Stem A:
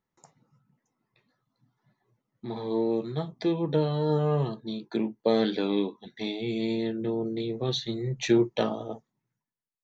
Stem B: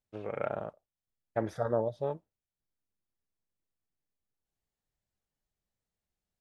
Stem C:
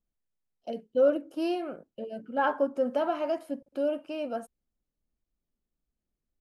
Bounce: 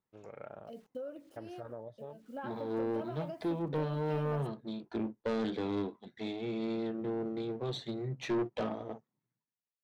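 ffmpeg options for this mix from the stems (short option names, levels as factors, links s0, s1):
-filter_complex "[0:a]aeval=exprs='if(lt(val(0),0),0.447*val(0),val(0))':c=same,highpass=99,aemphasis=mode=reproduction:type=75kf,volume=0.794[s0];[1:a]volume=0.251,asplit=2[s1][s2];[2:a]acrusher=bits=9:mix=0:aa=0.000001,volume=0.447[s3];[s2]apad=whole_len=282638[s4];[s3][s4]sidechaincompress=threshold=0.00224:ratio=8:attack=16:release=233[s5];[s1][s5]amix=inputs=2:normalize=0,acompressor=threshold=0.0112:ratio=10,volume=1[s6];[s0][s6]amix=inputs=2:normalize=0,asoftclip=type=tanh:threshold=0.0447"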